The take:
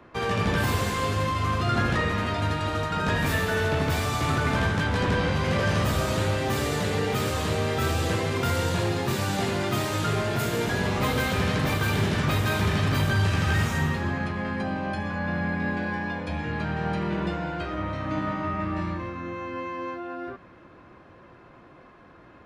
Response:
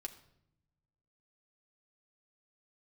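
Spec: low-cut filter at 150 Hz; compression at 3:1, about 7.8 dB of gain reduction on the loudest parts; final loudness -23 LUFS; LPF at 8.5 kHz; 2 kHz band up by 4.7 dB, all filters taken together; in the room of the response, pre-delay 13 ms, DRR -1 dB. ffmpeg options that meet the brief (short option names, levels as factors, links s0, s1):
-filter_complex "[0:a]highpass=150,lowpass=8500,equalizer=f=2000:t=o:g=6,acompressor=threshold=0.0282:ratio=3,asplit=2[s0][s1];[1:a]atrim=start_sample=2205,adelay=13[s2];[s1][s2]afir=irnorm=-1:irlink=0,volume=1.58[s3];[s0][s3]amix=inputs=2:normalize=0,volume=2"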